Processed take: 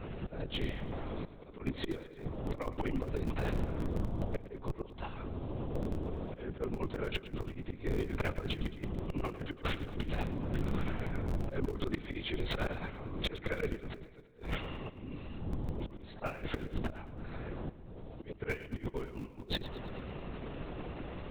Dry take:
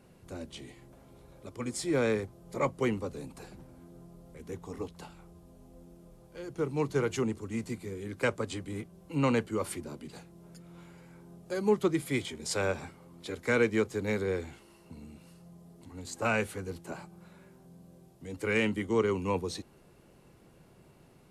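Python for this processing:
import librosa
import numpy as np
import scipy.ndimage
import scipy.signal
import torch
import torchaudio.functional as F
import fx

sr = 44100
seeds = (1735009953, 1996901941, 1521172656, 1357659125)

p1 = fx.lpc_vocoder(x, sr, seeds[0], excitation='whisper', order=10)
p2 = fx.auto_swell(p1, sr, attack_ms=703.0)
p3 = fx.schmitt(p2, sr, flips_db=-44.5)
p4 = p2 + F.gain(torch.from_numpy(p3), -10.5).numpy()
p5 = fx.over_compress(p4, sr, threshold_db=-47.0, ratio=-0.5)
p6 = np.clip(p5, -10.0 ** (-34.5 / 20.0), 10.0 ** (-34.5 / 20.0))
p7 = p6 + fx.echo_feedback(p6, sr, ms=110, feedback_pct=57, wet_db=-15, dry=0)
y = F.gain(torch.from_numpy(p7), 11.5).numpy()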